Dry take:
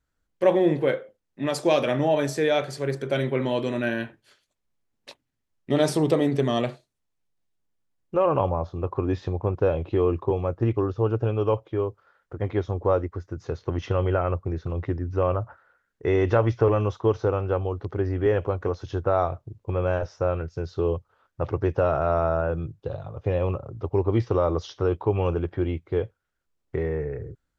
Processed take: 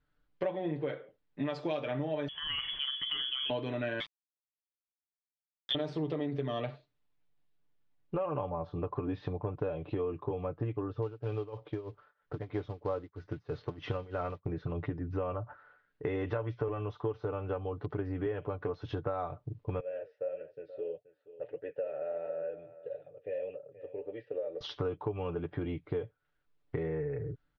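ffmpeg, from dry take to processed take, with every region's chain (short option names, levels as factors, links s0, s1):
-filter_complex "[0:a]asettb=1/sr,asplit=3[s0][s1][s2];[s0]atrim=end=2.284[s3];[s1]atrim=start=2.28:end=3.5,asetpts=PTS-STARTPTS,afade=t=in:d=0.004:c=qsin,afade=t=out:st=1.216:d=0.004:c=qsin,lowpass=f=3000:t=q:w=0.5098,lowpass=f=3000:t=q:w=0.6013,lowpass=f=3000:t=q:w=0.9,lowpass=f=3000:t=q:w=2.563,afreqshift=-3500,lowshelf=f=180:g=11,acompressor=threshold=0.0251:ratio=2.5:attack=3.2:release=140:knee=1:detection=peak[s4];[s2]atrim=start=3.496[s5];[s3][s4]acrossfade=d=0.004:c1=hsin:c2=qsin[s6];[s6][s5]acrossfade=d=0.004:c1=qsin:c2=hsin,asettb=1/sr,asplit=3[s7][s8][s9];[s7]atrim=end=4.004[s10];[s8]atrim=start=4:end=5.75,asetpts=PTS-STARTPTS,afade=t=in:d=0.004:c=qsin,afade=t=out:st=1.746:d=0.004:c=qsin,lowpass=f=3100:t=q:w=0.5098,lowpass=f=3100:t=q:w=0.6013,lowpass=f=3100:t=q:w=0.9,lowpass=f=3100:t=q:w=2.563,afreqshift=-3700,aeval=exprs='val(0)*gte(abs(val(0)),0.0316)':c=same[s11];[s9]atrim=start=5.746[s12];[s10][s11]acrossfade=d=0.004:c1=hsin:c2=qsin[s13];[s13][s12]acrossfade=d=0.004:c1=qsin:c2=hsin,asettb=1/sr,asplit=3[s14][s15][s16];[s14]atrim=end=11.024[s17];[s15]atrim=start=11.02:end=14.46,asetpts=PTS-STARTPTS,afade=t=in:d=0.004:c=qsin,afade=t=out:st=3.436:d=0.004:c=qsin,tremolo=f=3.1:d=0.91,acrusher=bits=6:mode=log:mix=0:aa=0.000001[s18];[s16]atrim=start=14.456[s19];[s17][s18]acrossfade=d=0.004:c1=hsin:c2=qsin[s20];[s20][s19]acrossfade=d=0.004:c1=qsin:c2=hsin,asettb=1/sr,asplit=3[s21][s22][s23];[s21]atrim=end=19.804[s24];[s22]atrim=start=19.8:end=24.61,asetpts=PTS-STARTPTS,afade=t=in:d=0.004:c=qsin,afade=t=out:st=4.806:d=0.004:c=qsin,asplit=3[s25][s26][s27];[s25]bandpass=f=530:t=q:w=8,volume=1[s28];[s26]bandpass=f=1840:t=q:w=8,volume=0.501[s29];[s27]bandpass=f=2480:t=q:w=8,volume=0.355[s30];[s28][s29][s30]amix=inputs=3:normalize=0,flanger=delay=3.4:depth=7.8:regen=67:speed=1.6:shape=triangular,aecho=1:1:478:0.15,atrim=end_sample=212121[s31];[s23]atrim=start=24.606[s32];[s24][s31]acrossfade=d=0.004:c1=hsin:c2=qsin[s33];[s33][s32]acrossfade=d=0.004:c1=qsin:c2=hsin,lowpass=f=4100:w=0.5412,lowpass=f=4100:w=1.3066,aecho=1:1:6.8:0.61,acompressor=threshold=0.0251:ratio=6"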